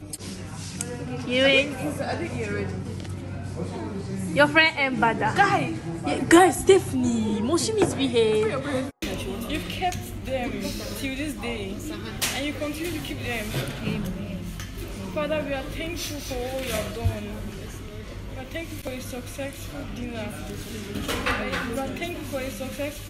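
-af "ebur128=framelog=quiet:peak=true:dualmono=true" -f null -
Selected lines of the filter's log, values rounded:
Integrated loudness:
  I:         -22.8 LUFS
  Threshold: -32.9 LUFS
Loudness range:
  LRA:        11.2 LU
  Threshold: -42.8 LUFS
  LRA low:   -29.1 LUFS
  LRA high:  -17.9 LUFS
True peak:
  Peak:       -4.8 dBFS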